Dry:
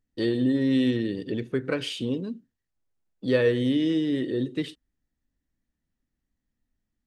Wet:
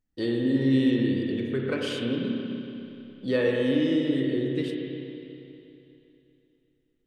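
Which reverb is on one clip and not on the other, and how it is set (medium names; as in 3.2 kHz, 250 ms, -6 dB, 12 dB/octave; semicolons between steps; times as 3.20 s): spring tank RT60 3 s, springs 30/59 ms, chirp 75 ms, DRR -1 dB; trim -3 dB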